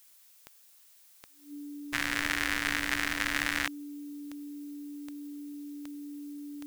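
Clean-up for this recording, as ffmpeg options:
ffmpeg -i in.wav -af "adeclick=threshold=4,bandreject=frequency=290:width=30,afftdn=noise_reduction=21:noise_floor=-59" out.wav

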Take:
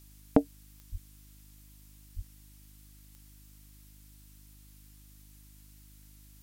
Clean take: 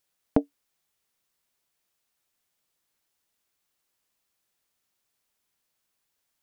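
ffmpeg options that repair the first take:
ffmpeg -i in.wav -filter_complex "[0:a]adeclick=threshold=4,bandreject=frequency=51.2:width_type=h:width=4,bandreject=frequency=102.4:width_type=h:width=4,bandreject=frequency=153.6:width_type=h:width=4,bandreject=frequency=204.8:width_type=h:width=4,bandreject=frequency=256:width_type=h:width=4,bandreject=frequency=307.2:width_type=h:width=4,asplit=3[link_01][link_02][link_03];[link_01]afade=type=out:start_time=0.91:duration=0.02[link_04];[link_02]highpass=frequency=140:width=0.5412,highpass=frequency=140:width=1.3066,afade=type=in:start_time=0.91:duration=0.02,afade=type=out:start_time=1.03:duration=0.02[link_05];[link_03]afade=type=in:start_time=1.03:duration=0.02[link_06];[link_04][link_05][link_06]amix=inputs=3:normalize=0,asplit=3[link_07][link_08][link_09];[link_07]afade=type=out:start_time=2.15:duration=0.02[link_10];[link_08]highpass=frequency=140:width=0.5412,highpass=frequency=140:width=1.3066,afade=type=in:start_time=2.15:duration=0.02,afade=type=out:start_time=2.27:duration=0.02[link_11];[link_09]afade=type=in:start_time=2.27:duration=0.02[link_12];[link_10][link_11][link_12]amix=inputs=3:normalize=0,afftdn=noise_reduction=24:noise_floor=-55" out.wav

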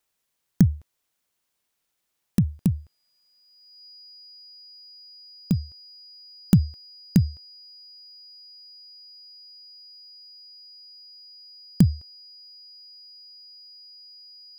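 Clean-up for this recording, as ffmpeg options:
ffmpeg -i in.wav -af "bandreject=frequency=4900:width=30" out.wav

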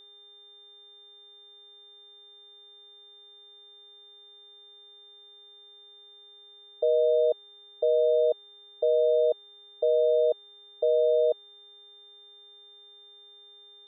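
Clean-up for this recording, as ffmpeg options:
ffmpeg -i in.wav -af "bandreject=frequency=407.3:width_type=h:width=4,bandreject=frequency=814.6:width_type=h:width=4,bandreject=frequency=1221.9:width_type=h:width=4,bandreject=frequency=1629.2:width_type=h:width=4,bandreject=frequency=2036.5:width_type=h:width=4,bandreject=frequency=3600:width=30" out.wav

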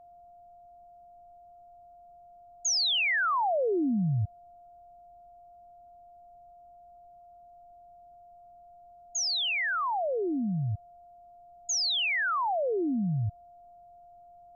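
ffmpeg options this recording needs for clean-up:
ffmpeg -i in.wav -af "bandreject=frequency=700:width=30,agate=range=-21dB:threshold=-46dB" out.wav

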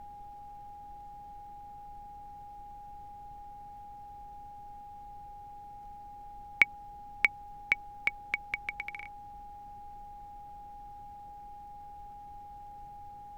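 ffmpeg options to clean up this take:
ffmpeg -i in.wav -af "adeclick=threshold=4,bandreject=frequency=129.1:width_type=h:width=4,bandreject=frequency=258.2:width_type=h:width=4,bandreject=frequency=387.3:width_type=h:width=4,bandreject=frequency=516.4:width_type=h:width=4,bandreject=frequency=645.5:width_type=h:width=4,bandreject=frequency=820:width=30,afftdn=noise_reduction=30:noise_floor=-48" out.wav

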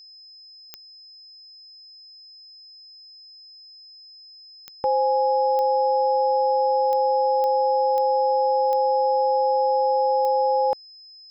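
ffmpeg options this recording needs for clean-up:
ffmpeg -i in.wav -af "adeclick=threshold=4,bandreject=frequency=5100:width=30" out.wav

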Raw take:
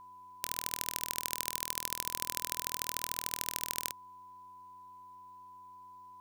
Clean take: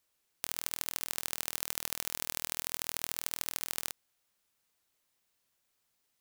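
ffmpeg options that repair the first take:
ffmpeg -i in.wav -af "bandreject=frequency=92.7:width_type=h:width=4,bandreject=frequency=185.4:width_type=h:width=4,bandreject=frequency=278.1:width_type=h:width=4,bandreject=frequency=370.8:width_type=h:width=4,bandreject=frequency=1000:width=30" out.wav

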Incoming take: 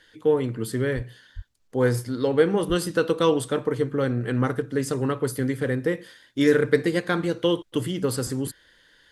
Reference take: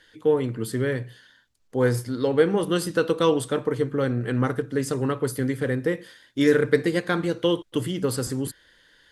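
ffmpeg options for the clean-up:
ffmpeg -i in.wav -filter_complex "[0:a]asplit=3[link_01][link_02][link_03];[link_01]afade=type=out:start_time=0.95:duration=0.02[link_04];[link_02]highpass=frequency=140:width=0.5412,highpass=frequency=140:width=1.3066,afade=type=in:start_time=0.95:duration=0.02,afade=type=out:start_time=1.07:duration=0.02[link_05];[link_03]afade=type=in:start_time=1.07:duration=0.02[link_06];[link_04][link_05][link_06]amix=inputs=3:normalize=0,asplit=3[link_07][link_08][link_09];[link_07]afade=type=out:start_time=1.35:duration=0.02[link_10];[link_08]highpass=frequency=140:width=0.5412,highpass=frequency=140:width=1.3066,afade=type=in:start_time=1.35:duration=0.02,afade=type=out:start_time=1.47:duration=0.02[link_11];[link_09]afade=type=in:start_time=1.47:duration=0.02[link_12];[link_10][link_11][link_12]amix=inputs=3:normalize=0,asplit=3[link_13][link_14][link_15];[link_13]afade=type=out:start_time=2.68:duration=0.02[link_16];[link_14]highpass=frequency=140:width=0.5412,highpass=frequency=140:width=1.3066,afade=type=in:start_time=2.68:duration=0.02,afade=type=out:start_time=2.8:duration=0.02[link_17];[link_15]afade=type=in:start_time=2.8:duration=0.02[link_18];[link_16][link_17][link_18]amix=inputs=3:normalize=0" out.wav

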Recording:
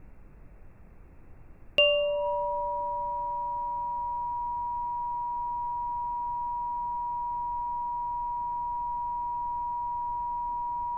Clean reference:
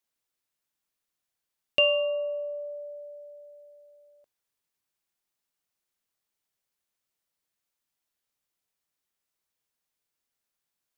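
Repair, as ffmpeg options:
ffmpeg -i in.wav -filter_complex "[0:a]bandreject=frequency=960:width=30,asplit=3[link_01][link_02][link_03];[link_01]afade=type=out:start_time=4.03:duration=0.02[link_04];[link_02]highpass=frequency=140:width=0.5412,highpass=frequency=140:width=1.3066,afade=type=in:start_time=4.03:duration=0.02,afade=type=out:start_time=4.15:duration=0.02[link_05];[link_03]afade=type=in:start_time=4.15:duration=0.02[link_06];[link_04][link_05][link_06]amix=inputs=3:normalize=0,asplit=3[link_07][link_08][link_09];[link_07]afade=type=out:start_time=4.57:duration=0.02[link_10];[link_08]highpass=frequency=140:width=0.5412,highpass=frequency=140:width=1.3066,afade=type=in:start_time=4.57:duration=0.02,afade=type=out:start_time=4.69:duration=0.02[link_11];[link_09]afade=type=in:start_time=4.69:duration=0.02[link_12];[link_10][link_11][link_12]amix=inputs=3:normalize=0,asplit=3[link_13][link_14][link_15];[link_13]afade=type=out:start_time=7.5:duration=0.02[link_16];[link_14]highpass=frequency=140:width=0.5412,highpass=frequency=140:width=1.3066,afade=type=in:start_time=7.5:duration=0.02,afade=type=out:start_time=7.62:duration=0.02[link_17];[link_15]afade=type=in:start_time=7.62:duration=0.02[link_18];[link_16][link_17][link_18]amix=inputs=3:normalize=0,afftdn=noise_reduction=30:noise_floor=-49" out.wav

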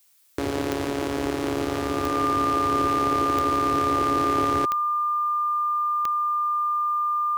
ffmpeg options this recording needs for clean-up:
ffmpeg -i in.wav -af "adeclick=threshold=4,bandreject=frequency=1200:width=30,agate=range=-21dB:threshold=-20dB" out.wav

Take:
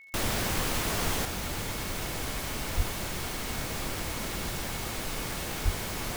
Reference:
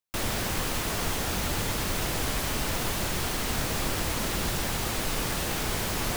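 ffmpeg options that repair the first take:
ffmpeg -i in.wav -filter_complex "[0:a]adeclick=threshold=4,bandreject=frequency=2200:width=30,asplit=3[link_01][link_02][link_03];[link_01]afade=type=out:start_time=2.76:duration=0.02[link_04];[link_02]highpass=frequency=140:width=0.5412,highpass=frequency=140:width=1.3066,afade=type=in:start_time=2.76:duration=0.02,afade=type=out:start_time=2.88:duration=0.02[link_05];[link_03]afade=type=in:start_time=2.88:duration=0.02[link_06];[link_04][link_05][link_06]amix=inputs=3:normalize=0,asplit=3[link_07][link_08][link_09];[link_07]afade=type=out:start_time=5.64:duration=0.02[link_10];[link_08]highpass=frequency=140:width=0.5412,highpass=frequency=140:width=1.3066,afade=type=in:start_time=5.64:duration=0.02,afade=type=out:start_time=5.76:duration=0.02[link_11];[link_09]afade=type=in:start_time=5.76:duration=0.02[link_12];[link_10][link_11][link_12]amix=inputs=3:normalize=0,asetnsamples=nb_out_samples=441:pad=0,asendcmd='1.25 volume volume 5dB',volume=0dB" out.wav

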